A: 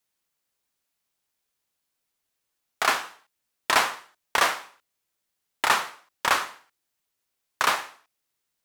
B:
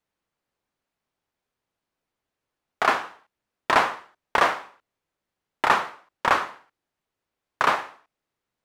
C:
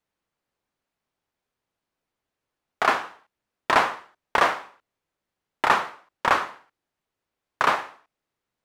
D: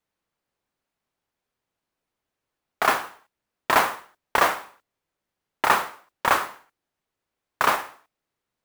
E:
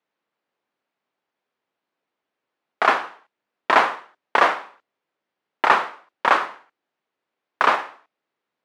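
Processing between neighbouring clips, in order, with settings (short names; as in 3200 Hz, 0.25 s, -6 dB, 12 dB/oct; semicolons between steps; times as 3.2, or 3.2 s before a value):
LPF 1100 Hz 6 dB/oct; gain +6 dB
nothing audible
modulation noise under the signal 14 dB
BPF 240–3600 Hz; gain +3.5 dB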